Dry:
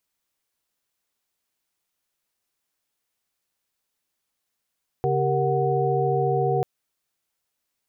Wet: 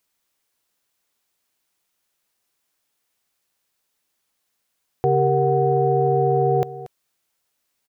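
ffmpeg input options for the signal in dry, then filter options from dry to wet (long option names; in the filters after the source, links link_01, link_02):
-f lavfi -i "aevalsrc='0.0562*(sin(2*PI*138.59*t)+sin(2*PI*392*t)+sin(2*PI*466.16*t)+sin(2*PI*739.99*t))':duration=1.59:sample_rate=44100"
-af "lowshelf=frequency=140:gain=-3.5,acontrast=34,aecho=1:1:233:0.15"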